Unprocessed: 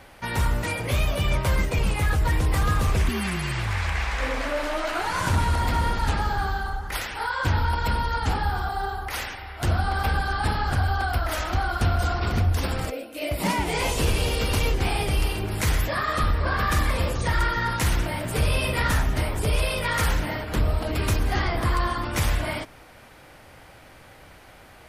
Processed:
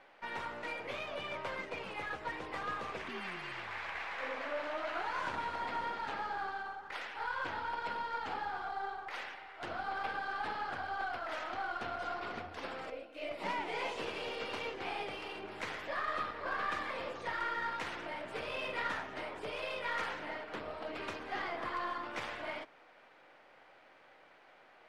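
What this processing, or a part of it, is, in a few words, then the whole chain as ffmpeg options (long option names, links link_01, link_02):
crystal radio: -af "highpass=390,lowpass=3100,aeval=exprs='if(lt(val(0),0),0.708*val(0),val(0))':channel_layout=same,volume=-8.5dB"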